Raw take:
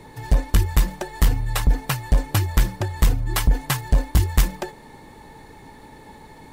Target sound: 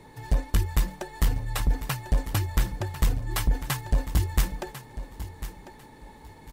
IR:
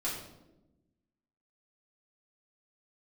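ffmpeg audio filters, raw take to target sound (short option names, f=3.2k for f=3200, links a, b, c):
-af "aecho=1:1:1047|2094|3141:0.224|0.0515|0.0118,volume=-6dB"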